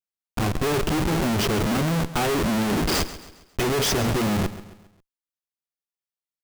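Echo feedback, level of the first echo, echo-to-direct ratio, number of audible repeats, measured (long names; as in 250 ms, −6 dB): 44%, −15.0 dB, −14.0 dB, 3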